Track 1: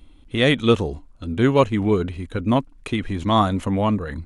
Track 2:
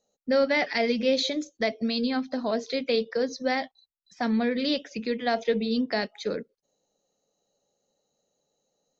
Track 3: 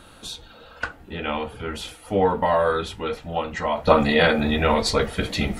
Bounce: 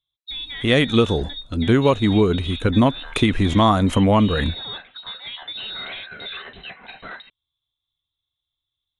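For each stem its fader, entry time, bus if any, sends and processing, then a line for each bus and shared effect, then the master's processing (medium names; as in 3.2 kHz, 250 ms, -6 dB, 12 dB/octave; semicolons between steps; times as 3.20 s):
+2.0 dB, 0.30 s, no bus, no send, level rider
-5.5 dB, 0.00 s, bus A, no send, none
-6.5 dB, 1.70 s, bus A, no send, FFT band-reject 250–820 Hz; LFO high-pass square 3 Hz 370–2500 Hz; valve stage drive 23 dB, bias 0.3
bus A: 0.0 dB, frequency inversion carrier 4 kHz; peak limiter -24 dBFS, peak gain reduction 6 dB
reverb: none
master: compression 6:1, threshold -12 dBFS, peak gain reduction 8 dB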